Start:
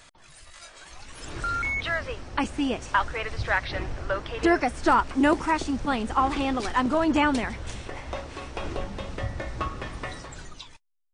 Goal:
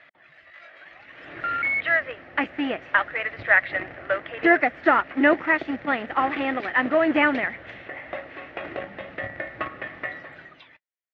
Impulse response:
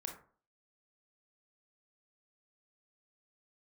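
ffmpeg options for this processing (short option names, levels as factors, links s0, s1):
-filter_complex "[0:a]asplit=2[s0][s1];[s1]aeval=exprs='val(0)*gte(abs(val(0)),0.0631)':c=same,volume=0.447[s2];[s0][s2]amix=inputs=2:normalize=0,highpass=210,equalizer=f=220:t=q:w=4:g=-6,equalizer=f=420:t=q:w=4:g=-5,equalizer=f=630:t=q:w=4:g=4,equalizer=f=970:t=q:w=4:g=-9,equalizer=f=1900:t=q:w=4:g=10,lowpass=f=2800:w=0.5412,lowpass=f=2800:w=1.3066"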